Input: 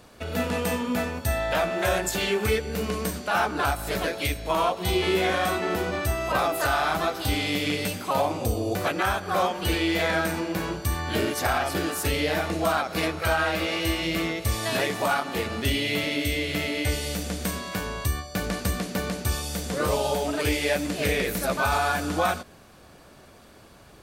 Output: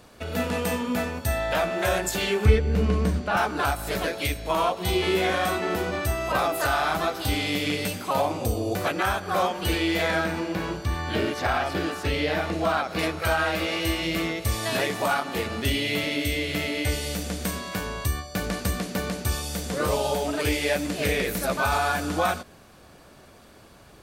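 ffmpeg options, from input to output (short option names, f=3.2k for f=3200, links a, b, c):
-filter_complex "[0:a]asettb=1/sr,asplit=3[a][b][c];[a]atrim=end=2.454[d];[b]atrim=start=2.45:end=3.37,asetpts=PTS-STARTPTS,afade=t=in:d=0.004:c=qsin,afade=t=out:st=0.916:d=0.004:c=qsin,aemphasis=mode=reproduction:type=bsi[e];[c]atrim=start=3.366[f];[d][e]acrossfade=d=0.004:c1=hsin:c2=qsin[g];[g][f]acrossfade=d=0.004:c1=qsin:c2=hsin,asettb=1/sr,asplit=3[h][i][j];[h]atrim=end=10.244[k];[i]atrim=start=10.24:end=12.99,asetpts=PTS-STARTPTS,afade=t=in:d=0.004:c=qsin,afade=t=out:st=2.746:d=0.004:c=qsin,acrossover=split=5100[l][m];[m]acompressor=threshold=-50dB:ratio=4:attack=1:release=60[n];[l][n]amix=inputs=2:normalize=0[o];[j]atrim=start=12.986[p];[k][o]acrossfade=d=0.004:c1=hsin:c2=qsin[q];[q][p]acrossfade=d=0.004:c1=qsin:c2=hsin"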